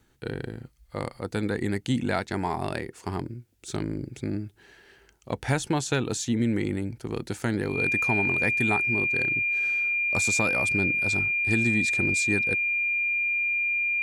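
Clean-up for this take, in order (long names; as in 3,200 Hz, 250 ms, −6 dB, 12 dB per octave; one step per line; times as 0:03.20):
notch filter 2,400 Hz, Q 30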